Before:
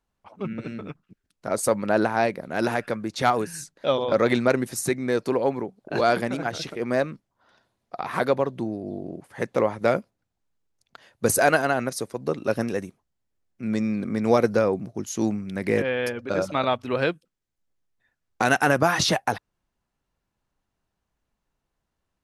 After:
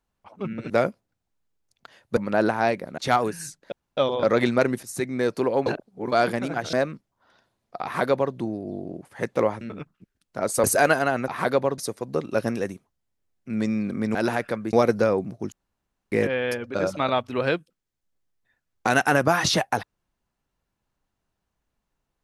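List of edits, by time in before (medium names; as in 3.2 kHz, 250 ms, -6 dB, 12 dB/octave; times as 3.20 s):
0.70–1.73 s: swap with 9.80–11.27 s
2.54–3.12 s: move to 14.28 s
3.86 s: insert room tone 0.25 s
4.72–5.01 s: fade in, from -13 dB
5.55–6.01 s: reverse
6.62–6.92 s: delete
8.03–8.53 s: copy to 11.91 s
15.07–15.67 s: room tone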